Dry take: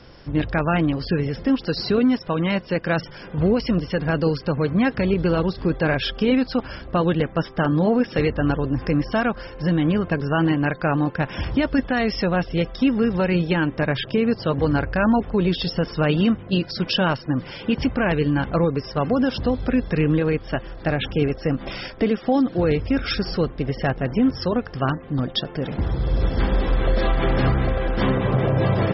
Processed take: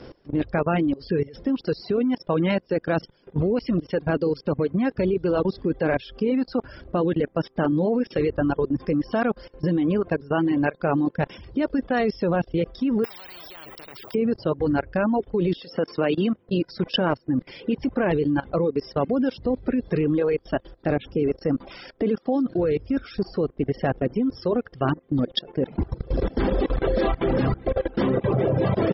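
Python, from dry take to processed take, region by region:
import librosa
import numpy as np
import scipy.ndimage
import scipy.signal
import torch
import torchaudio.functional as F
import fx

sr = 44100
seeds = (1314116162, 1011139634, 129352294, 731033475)

y = fx.chain(x, sr, fx.resample_bad(factor=2, down='filtered', up='zero_stuff'),
    fx.spectral_comp(ratio=10.0), at=(13.04, 14.15))
y = fx.chain(y, sr, fx.highpass(hz=290.0, slope=6),
    fx.band_squash(depth_pct=40), at=(15.58, 16.49))
y = fx.dereverb_blind(y, sr, rt60_s=1.8)
y = fx.peak_eq(y, sr, hz=370.0, db=10.5, octaves=2.1)
y = fx.level_steps(y, sr, step_db=21)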